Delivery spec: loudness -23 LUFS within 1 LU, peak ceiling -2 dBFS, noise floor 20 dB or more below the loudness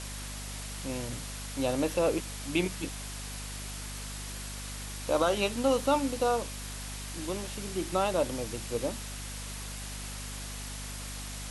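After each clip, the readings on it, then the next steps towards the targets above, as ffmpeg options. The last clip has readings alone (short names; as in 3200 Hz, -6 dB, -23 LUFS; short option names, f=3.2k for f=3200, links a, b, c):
hum 50 Hz; harmonics up to 250 Hz; hum level -39 dBFS; noise floor -40 dBFS; noise floor target -53 dBFS; loudness -33.0 LUFS; peak -13.0 dBFS; loudness target -23.0 LUFS
-> -af "bandreject=f=50:t=h:w=4,bandreject=f=100:t=h:w=4,bandreject=f=150:t=h:w=4,bandreject=f=200:t=h:w=4,bandreject=f=250:t=h:w=4"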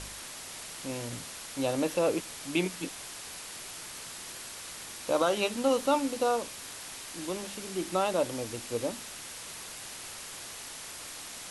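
hum none; noise floor -43 dBFS; noise floor target -53 dBFS
-> -af "afftdn=nr=10:nf=-43"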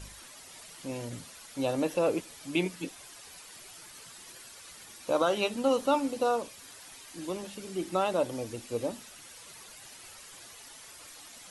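noise floor -50 dBFS; noise floor target -52 dBFS
-> -af "afftdn=nr=6:nf=-50"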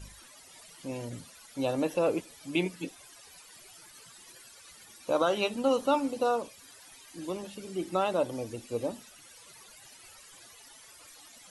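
noise floor -54 dBFS; loudness -31.5 LUFS; peak -13.5 dBFS; loudness target -23.0 LUFS
-> -af "volume=8.5dB"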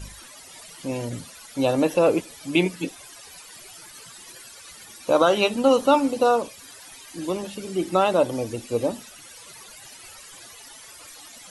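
loudness -23.0 LUFS; peak -5.0 dBFS; noise floor -45 dBFS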